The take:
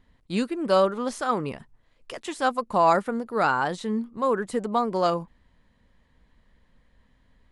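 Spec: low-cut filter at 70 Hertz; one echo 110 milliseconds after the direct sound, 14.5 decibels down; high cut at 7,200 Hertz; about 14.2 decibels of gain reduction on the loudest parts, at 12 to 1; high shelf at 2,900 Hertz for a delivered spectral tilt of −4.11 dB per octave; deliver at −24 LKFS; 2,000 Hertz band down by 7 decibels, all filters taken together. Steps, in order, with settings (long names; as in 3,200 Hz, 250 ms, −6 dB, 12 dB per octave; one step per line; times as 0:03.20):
high-pass filter 70 Hz
low-pass filter 7,200 Hz
parametric band 2,000 Hz −8.5 dB
high-shelf EQ 2,900 Hz −8 dB
downward compressor 12 to 1, threshold −31 dBFS
single-tap delay 110 ms −14.5 dB
level +12.5 dB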